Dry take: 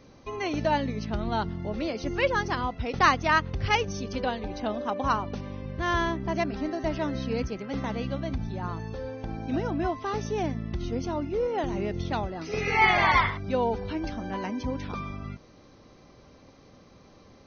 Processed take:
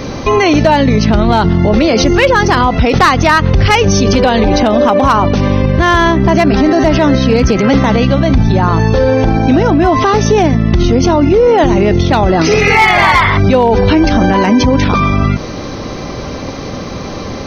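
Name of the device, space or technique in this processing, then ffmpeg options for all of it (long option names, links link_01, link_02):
loud club master: -af "acompressor=threshold=-29dB:ratio=2.5,asoftclip=type=hard:threshold=-23dB,alimiter=level_in=32.5dB:limit=-1dB:release=50:level=0:latency=1,volume=-1dB"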